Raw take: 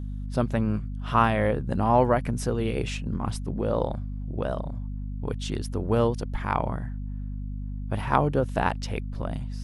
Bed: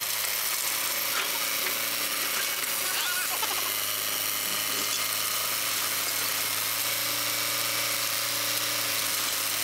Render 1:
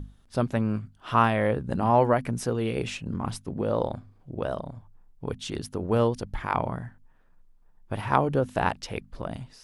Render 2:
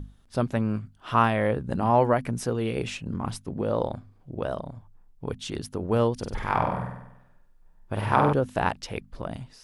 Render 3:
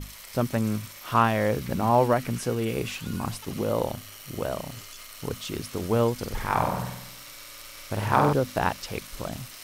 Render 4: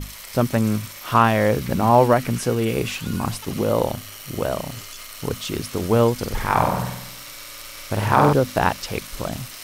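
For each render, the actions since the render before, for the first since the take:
notches 50/100/150/200/250 Hz
6.15–8.33 flutter echo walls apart 8.2 m, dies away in 0.83 s
add bed -16 dB
gain +6 dB; limiter -3 dBFS, peak gain reduction 2.5 dB

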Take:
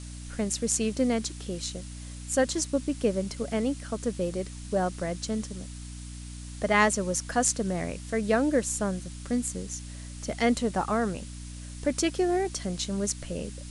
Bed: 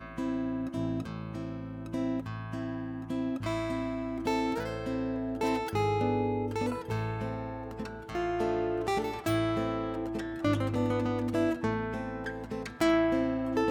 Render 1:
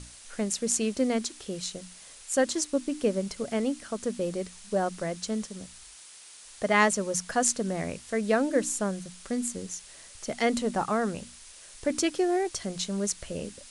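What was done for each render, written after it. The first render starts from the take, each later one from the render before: notches 60/120/180/240/300 Hz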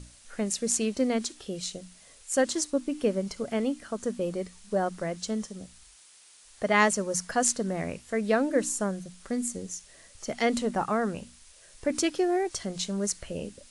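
noise print and reduce 6 dB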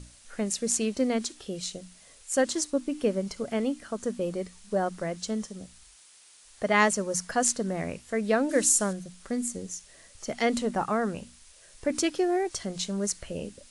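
8.49–8.93 high shelf 2500 Hz +10.5 dB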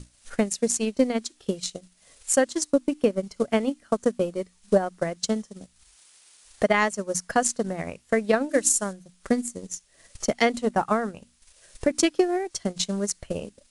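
transient shaper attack +11 dB, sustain -10 dB; limiter -9.5 dBFS, peak gain reduction 6.5 dB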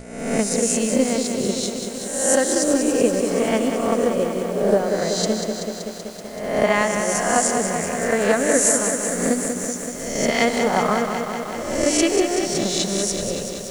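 spectral swells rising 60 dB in 0.94 s; lo-fi delay 0.19 s, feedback 80%, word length 7-bit, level -6.5 dB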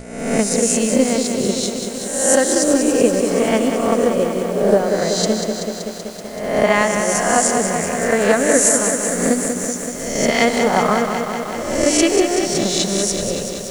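gain +3.5 dB; limiter -2 dBFS, peak gain reduction 2 dB

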